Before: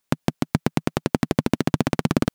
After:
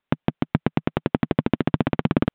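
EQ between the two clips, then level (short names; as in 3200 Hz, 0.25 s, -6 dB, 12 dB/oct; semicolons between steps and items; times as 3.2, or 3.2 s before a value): steep low-pass 3700 Hz 72 dB/oct; air absorption 100 m; 0.0 dB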